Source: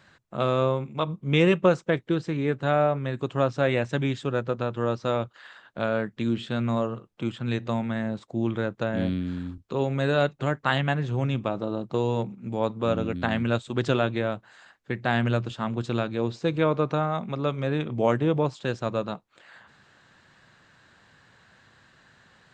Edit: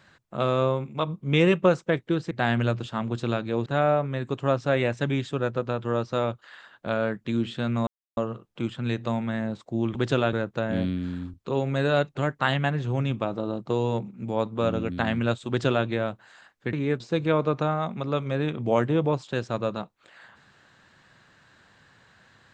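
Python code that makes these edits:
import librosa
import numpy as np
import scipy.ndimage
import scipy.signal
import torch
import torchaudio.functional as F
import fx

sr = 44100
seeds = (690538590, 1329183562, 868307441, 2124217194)

y = fx.edit(x, sr, fx.swap(start_s=2.31, length_s=0.27, other_s=14.97, other_length_s=1.35),
    fx.insert_silence(at_s=6.79, length_s=0.3),
    fx.duplicate(start_s=13.72, length_s=0.38, to_s=8.57), tone=tone)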